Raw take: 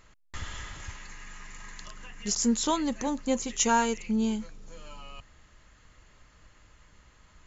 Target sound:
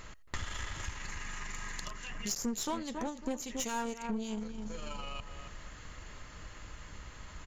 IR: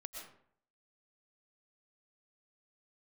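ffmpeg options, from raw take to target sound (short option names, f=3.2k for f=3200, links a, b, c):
-filter_complex "[0:a]asettb=1/sr,asplit=3[a][b][c];[a]atrim=end=1.904[d];[b]atrim=start=1.9:end=4.38,asetpts=PTS-STARTPTS,afade=t=in:d=0.004:c=qsin,afade=t=out:st=2.476:d=0.004:c=qsin,acrossover=split=2200[e][f];[e]aeval=exprs='val(0)*(1-0.7/2+0.7/2*cos(2*PI*3.6*n/s))':c=same[g];[f]aeval=exprs='val(0)*(1-0.7/2-0.7/2*cos(2*PI*3.6*n/s))':c=same[h];[g][h]amix=inputs=2:normalize=0[i];[c]atrim=start=4.376[j];[d][i]acrossfade=d=0.004:c1=hsin:c2=qsin[k];[k][j]acrossfade=d=0.004:c1=qsin:c2=hsin,asplit=2[l][m];[m]adelay=275,lowpass=f=1.7k:p=1,volume=-11dB,asplit=2[n][o];[o]adelay=275,lowpass=f=1.7k:p=1,volume=0.27,asplit=2[p][q];[q]adelay=275,lowpass=f=1.7k:p=1,volume=0.27[r];[l][n][p][r]amix=inputs=4:normalize=0[s];[1:a]atrim=start_sample=2205,atrim=end_sample=3969[t];[s][t]afir=irnorm=-1:irlink=0,aeval=exprs='0.0891*(cos(1*acos(clip(val(0)/0.0891,-1,1)))-cos(1*PI/2))+0.00708*(cos(8*acos(clip(val(0)/0.0891,-1,1)))-cos(8*PI/2))':c=same,acompressor=threshold=-53dB:ratio=3,volume=15dB"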